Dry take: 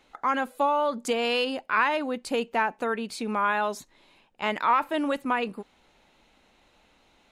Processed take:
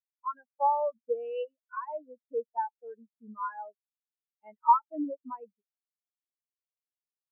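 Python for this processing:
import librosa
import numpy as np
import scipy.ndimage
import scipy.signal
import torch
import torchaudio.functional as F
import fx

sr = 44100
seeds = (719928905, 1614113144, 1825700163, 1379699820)

y = fx.noise_reduce_blind(x, sr, reduce_db=7)
y = fx.spectral_expand(y, sr, expansion=4.0)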